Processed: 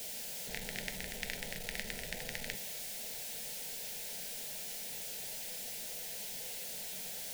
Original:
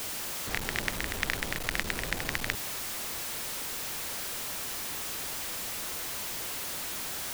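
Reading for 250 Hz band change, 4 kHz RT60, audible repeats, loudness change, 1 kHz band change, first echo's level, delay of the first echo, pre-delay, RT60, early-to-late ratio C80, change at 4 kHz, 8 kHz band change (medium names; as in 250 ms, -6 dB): -9.0 dB, 0.55 s, no echo, -7.0 dB, -13.5 dB, no echo, no echo, 4 ms, 0.60 s, 15.5 dB, -7.0 dB, -6.0 dB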